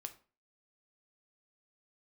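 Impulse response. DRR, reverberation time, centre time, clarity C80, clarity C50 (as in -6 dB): 7.0 dB, 0.35 s, 6 ms, 19.5 dB, 14.5 dB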